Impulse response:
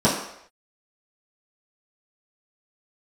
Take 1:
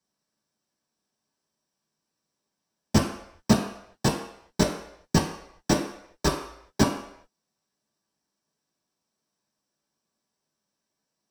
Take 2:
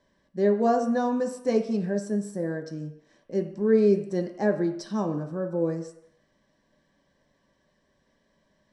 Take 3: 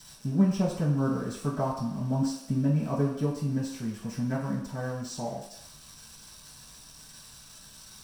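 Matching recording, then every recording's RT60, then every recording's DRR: 3; no single decay rate, no single decay rate, no single decay rate; -3.0 dB, 3.0 dB, -10.5 dB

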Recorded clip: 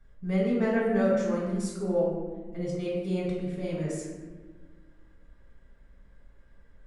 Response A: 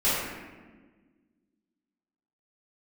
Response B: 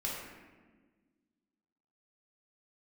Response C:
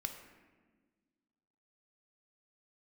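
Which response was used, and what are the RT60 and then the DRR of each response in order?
B; 1.4 s, 1.4 s, 1.4 s; -14.5 dB, -5.5 dB, 4.5 dB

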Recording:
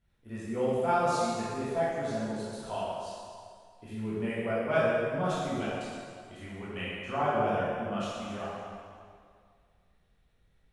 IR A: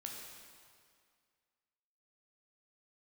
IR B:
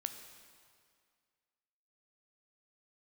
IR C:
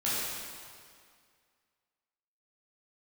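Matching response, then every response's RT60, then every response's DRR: C; 2.1 s, 2.1 s, 2.1 s; -1.0 dB, 7.0 dB, -10.0 dB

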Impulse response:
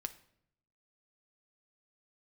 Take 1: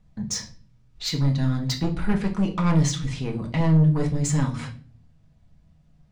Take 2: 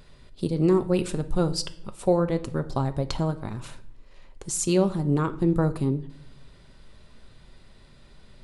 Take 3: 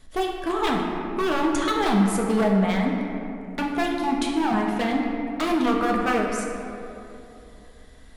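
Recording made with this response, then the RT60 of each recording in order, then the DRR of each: 2; 0.45 s, 0.70 s, 2.9 s; 1.0 dB, 9.0 dB, -1.0 dB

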